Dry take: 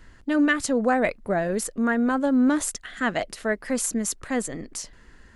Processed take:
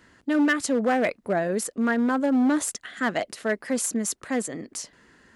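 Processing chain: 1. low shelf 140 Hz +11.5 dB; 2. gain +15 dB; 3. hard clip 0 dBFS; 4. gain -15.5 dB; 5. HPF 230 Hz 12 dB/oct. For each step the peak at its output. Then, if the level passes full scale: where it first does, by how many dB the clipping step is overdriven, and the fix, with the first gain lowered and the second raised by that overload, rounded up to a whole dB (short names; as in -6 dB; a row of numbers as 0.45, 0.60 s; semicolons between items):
-8.5, +6.5, 0.0, -15.5, -11.0 dBFS; step 2, 6.5 dB; step 2 +8 dB, step 4 -8.5 dB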